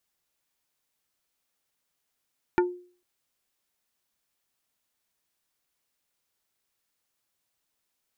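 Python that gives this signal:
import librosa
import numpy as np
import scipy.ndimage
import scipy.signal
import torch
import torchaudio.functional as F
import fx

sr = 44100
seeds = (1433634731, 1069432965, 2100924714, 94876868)

y = fx.strike_wood(sr, length_s=0.45, level_db=-16.5, body='plate', hz=357.0, decay_s=0.44, tilt_db=3.5, modes=5)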